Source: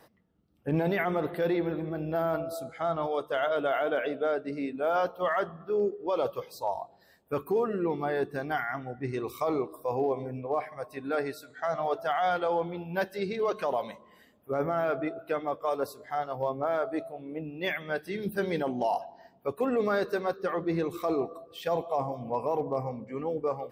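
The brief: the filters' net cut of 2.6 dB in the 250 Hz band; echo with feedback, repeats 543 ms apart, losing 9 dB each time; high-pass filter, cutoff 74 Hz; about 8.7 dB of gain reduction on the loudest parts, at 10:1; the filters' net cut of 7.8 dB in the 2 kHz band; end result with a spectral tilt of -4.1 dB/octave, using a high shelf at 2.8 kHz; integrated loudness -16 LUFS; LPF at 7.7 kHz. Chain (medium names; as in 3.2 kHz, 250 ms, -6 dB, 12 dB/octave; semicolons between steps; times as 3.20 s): high-pass 74 Hz; low-pass 7.7 kHz; peaking EQ 250 Hz -3.5 dB; peaking EQ 2 kHz -8.5 dB; treble shelf 2.8 kHz -7 dB; compression 10:1, threshold -34 dBFS; feedback delay 543 ms, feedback 35%, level -9 dB; trim +23 dB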